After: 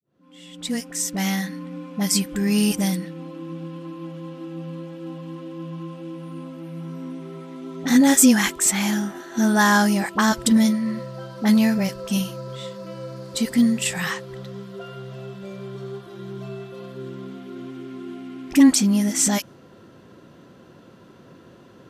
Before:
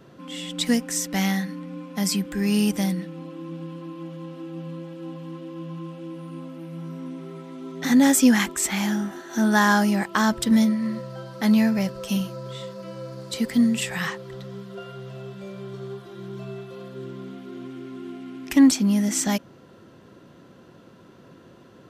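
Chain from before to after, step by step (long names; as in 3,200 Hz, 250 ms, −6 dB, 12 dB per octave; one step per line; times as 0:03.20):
fade in at the beginning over 1.62 s
dynamic equaliser 8,800 Hz, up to +5 dB, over −45 dBFS, Q 0.74
all-pass dispersion highs, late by 41 ms, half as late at 690 Hz
level +1.5 dB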